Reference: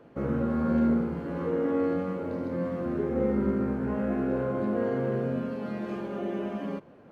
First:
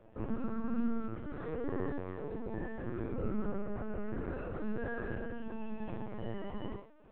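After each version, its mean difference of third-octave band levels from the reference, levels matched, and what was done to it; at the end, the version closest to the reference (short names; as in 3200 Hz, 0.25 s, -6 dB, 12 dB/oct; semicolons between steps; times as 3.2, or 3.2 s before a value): 4.5 dB: resonator bank A3 sus4, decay 0.33 s; LPC vocoder at 8 kHz pitch kept; gain +13.5 dB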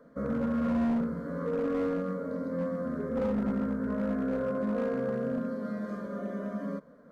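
3.5 dB: fixed phaser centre 540 Hz, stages 8; overloaded stage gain 25 dB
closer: second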